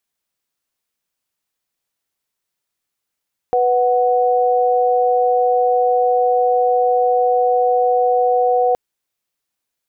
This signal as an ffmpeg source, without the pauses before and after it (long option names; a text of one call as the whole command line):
ffmpeg -f lavfi -i "aevalsrc='0.178*(sin(2*PI*493.88*t)+sin(2*PI*739.99*t))':duration=5.22:sample_rate=44100" out.wav